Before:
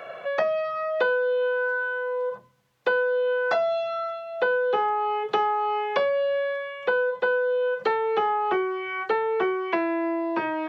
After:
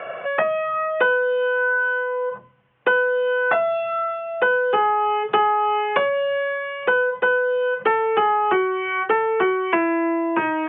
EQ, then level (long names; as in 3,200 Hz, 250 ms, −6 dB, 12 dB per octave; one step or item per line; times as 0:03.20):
elliptic low-pass filter 3,000 Hz, stop band 40 dB
dynamic equaliser 580 Hz, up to −5 dB, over −35 dBFS, Q 1.5
+7.5 dB